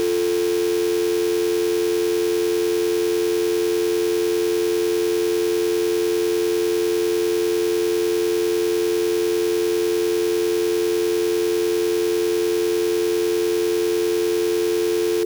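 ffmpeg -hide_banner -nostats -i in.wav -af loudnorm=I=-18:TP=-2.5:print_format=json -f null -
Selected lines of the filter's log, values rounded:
"input_i" : "-20.6",
"input_tp" : "-12.4",
"input_lra" : "0.0",
"input_thresh" : "-30.6",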